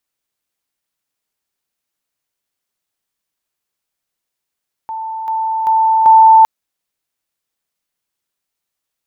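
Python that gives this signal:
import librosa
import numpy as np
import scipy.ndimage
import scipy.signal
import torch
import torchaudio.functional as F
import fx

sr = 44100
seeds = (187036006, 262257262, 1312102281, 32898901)

y = fx.level_ladder(sr, hz=888.0, from_db=-21.0, step_db=6.0, steps=4, dwell_s=0.39, gap_s=0.0)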